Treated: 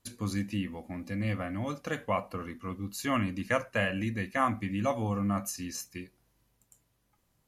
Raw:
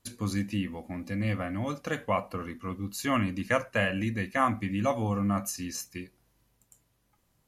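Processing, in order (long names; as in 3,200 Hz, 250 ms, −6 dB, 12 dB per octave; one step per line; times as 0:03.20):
level −2 dB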